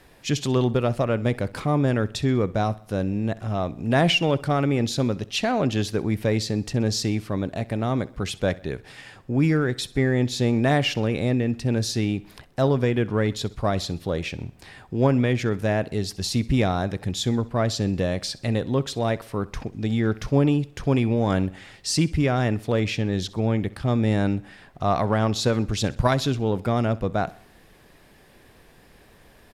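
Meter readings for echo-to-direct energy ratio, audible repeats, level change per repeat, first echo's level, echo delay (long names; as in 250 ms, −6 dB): −19.5 dB, 3, −6.5 dB, −20.5 dB, 64 ms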